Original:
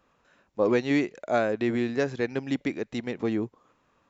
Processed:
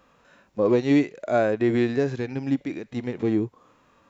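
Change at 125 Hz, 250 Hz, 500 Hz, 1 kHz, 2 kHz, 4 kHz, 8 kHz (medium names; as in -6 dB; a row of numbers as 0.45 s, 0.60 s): +6.0 dB, +4.5 dB, +3.0 dB, +1.5 dB, -0.5 dB, -1.0 dB, no reading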